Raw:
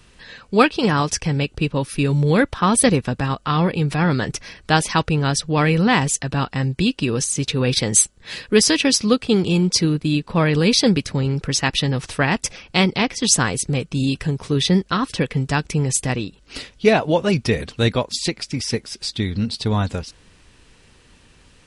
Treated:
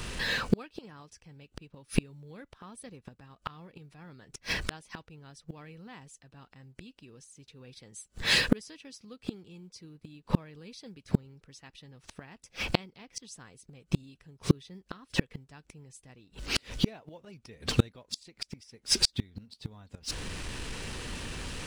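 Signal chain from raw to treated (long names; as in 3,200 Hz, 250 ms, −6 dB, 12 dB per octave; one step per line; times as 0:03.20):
mu-law and A-law mismatch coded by mu
gate with flip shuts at −15 dBFS, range −39 dB
level +7 dB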